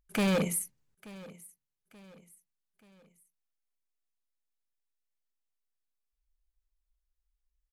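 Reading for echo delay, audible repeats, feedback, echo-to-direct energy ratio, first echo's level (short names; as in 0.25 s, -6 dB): 0.881 s, 3, 43%, -19.0 dB, -20.0 dB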